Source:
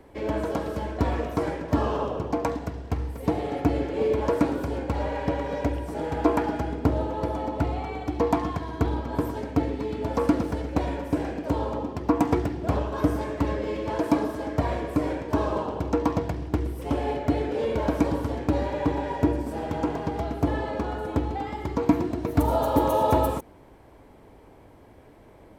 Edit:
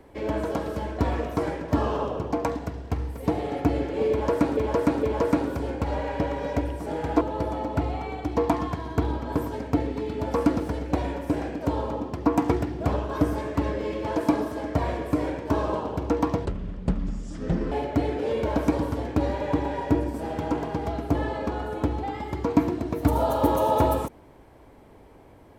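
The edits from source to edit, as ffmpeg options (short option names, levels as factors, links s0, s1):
-filter_complex "[0:a]asplit=6[s0][s1][s2][s3][s4][s5];[s0]atrim=end=4.572[s6];[s1]atrim=start=4.108:end=4.572[s7];[s2]atrim=start=4.108:end=6.292[s8];[s3]atrim=start=7.038:end=16.284[s9];[s4]atrim=start=16.28:end=17.04,asetpts=PTS-STARTPTS,asetrate=26460,aresample=44100[s10];[s5]atrim=start=17.036[s11];[s6][s7]acrossfade=d=0.004:c1=hsin:c2=hsin[s12];[s12][s8]acrossfade=d=0.004:c1=hsin:c2=hsin[s13];[s13][s9]acrossfade=d=0.004:c1=hsin:c2=hsin[s14];[s14][s10]acrossfade=d=0.004:c1=hsin:c2=hsin[s15];[s15][s11]acrossfade=d=0.004:c1=hsin:c2=hsin"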